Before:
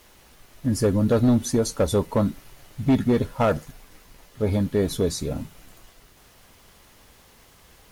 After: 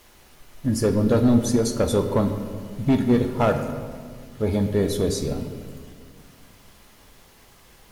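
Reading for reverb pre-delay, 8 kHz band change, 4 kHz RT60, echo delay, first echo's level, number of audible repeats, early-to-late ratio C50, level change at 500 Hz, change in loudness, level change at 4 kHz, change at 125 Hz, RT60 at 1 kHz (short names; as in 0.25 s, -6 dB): 3 ms, +0.5 dB, 1.2 s, none, none, none, 8.0 dB, +1.0 dB, +1.0 dB, +0.5 dB, +0.5 dB, 1.7 s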